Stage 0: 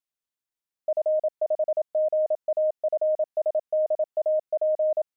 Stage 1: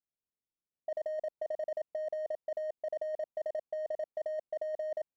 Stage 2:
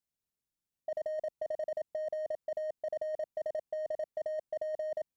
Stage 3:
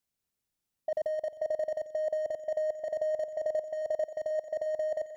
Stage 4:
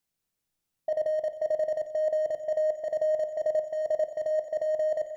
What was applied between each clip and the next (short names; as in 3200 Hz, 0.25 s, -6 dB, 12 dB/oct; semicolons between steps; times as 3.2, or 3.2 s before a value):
Wiener smoothing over 25 samples; negative-ratio compressor -30 dBFS, ratio -1; low-pass opened by the level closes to 610 Hz, open at -27.5 dBFS; gain -5 dB
tone controls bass +7 dB, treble +4 dB
swelling echo 89 ms, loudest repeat 5, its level -16 dB; gain +4.5 dB
reverb RT60 0.50 s, pre-delay 6 ms, DRR 9.5 dB; gain +2 dB